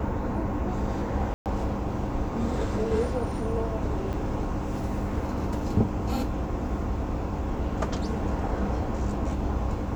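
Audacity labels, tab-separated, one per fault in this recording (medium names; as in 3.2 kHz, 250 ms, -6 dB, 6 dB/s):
1.340000	1.460000	dropout 118 ms
4.130000	4.130000	dropout 4.6 ms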